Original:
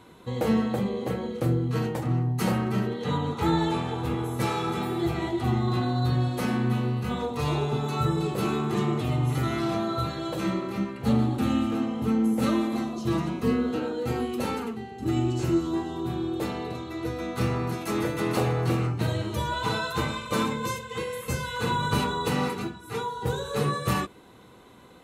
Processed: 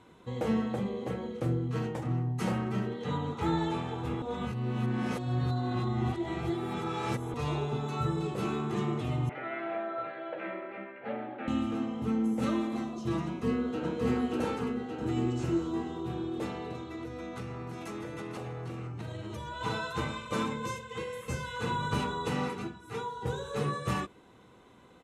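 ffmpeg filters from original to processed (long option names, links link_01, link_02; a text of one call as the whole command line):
ffmpeg -i in.wav -filter_complex "[0:a]asettb=1/sr,asplit=3[link_01][link_02][link_03];[link_01]atrim=end=9.294[link_04];[link_02]atrim=start=9.29:end=11.48,asetpts=PTS-STARTPTS,afade=type=in:duration=0.004:curve=qsin,afade=type=out:start_time=2.186:duration=0.004:curve=qsin,highpass=480,equalizer=frequency=610:width_type=q:width=4:gain=8,equalizer=frequency=1100:width_type=q:width=4:gain=-9,equalizer=frequency=1600:width_type=q:width=4:gain=6,equalizer=frequency=2200:width_type=q:width=4:gain=5,lowpass=frequency=2500:width=0.5412,lowpass=frequency=2500:width=1.3066[link_05];[link_03]atrim=start=11.476[link_06];[link_04][link_05]acrossfade=duration=0.004:curve1=hsin:curve2=qsin[link_07];[link_07][link_06]acrossfade=duration=0.004:curve1=qsin:curve2=hsin,asplit=2[link_08][link_09];[link_09]afade=type=in:start_time=13.25:duration=0.01,afade=type=out:start_time=13.97:duration=0.01,aecho=0:1:580|1160|1740|2320|2900|3480|4060|4640|5220|5800:1|0.6|0.36|0.216|0.1296|0.07776|0.046656|0.0279936|0.0167962|0.0100777[link_10];[link_08][link_10]amix=inputs=2:normalize=0,asettb=1/sr,asplit=3[link_11][link_12][link_13];[link_11]atrim=end=16.954[link_14];[link_12]atrim=start=16.95:end=19.61,asetpts=PTS-STARTPTS,afade=type=in:duration=0.004:curve=qsin,afade=type=out:start_time=2.656:duration=0.004:curve=qsin,acompressor=threshold=-30dB:ratio=6:attack=3.2:release=140:knee=1:detection=peak[link_15];[link_13]atrim=start=19.606[link_16];[link_14][link_15]acrossfade=duration=0.004:curve1=hsin:curve2=qsin[link_17];[link_17][link_16]acrossfade=duration=0.004:curve1=qsin:curve2=hsin,asplit=3[link_18][link_19][link_20];[link_18]atrim=end=4.222[link_21];[link_19]atrim=start=4.218:end=7.342,asetpts=PTS-STARTPTS,areverse[link_22];[link_20]atrim=start=7.338[link_23];[link_21][link_22]acrossfade=duration=0.004:curve1=hsin:curve2=hsin[link_24];[link_24][link_23]acrossfade=duration=0.004:curve1=hsin:curve2=hsin,lowpass=8300,equalizer=frequency=4300:width=4.7:gain=-5.5,volume=-5.5dB" out.wav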